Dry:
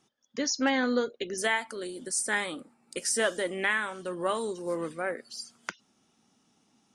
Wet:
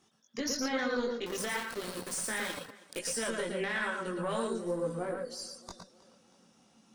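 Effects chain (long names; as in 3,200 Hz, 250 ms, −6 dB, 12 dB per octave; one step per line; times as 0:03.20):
one-sided soft clipper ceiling −24 dBFS
0:04.47–0:05.41: parametric band 2,100 Hz −12.5 dB 1.5 octaves
0:05.49–0:05.89: gain on a spectral selection 1,200–3,500 Hz −19 dB
in parallel at −2 dB: downward compressor, threshold −43 dBFS, peak gain reduction 19.5 dB
on the sum: multi-voice chorus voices 6, 1.1 Hz, delay 20 ms, depth 3 ms
0:01.26–0:02.99: centre clipping without the shift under −37 dBFS
brickwall limiter −24.5 dBFS, peak gain reduction 8.5 dB
tape delay 318 ms, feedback 55%, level −19 dB, low-pass 5,700 Hz
on a send at −3.5 dB: convolution reverb, pre-delay 107 ms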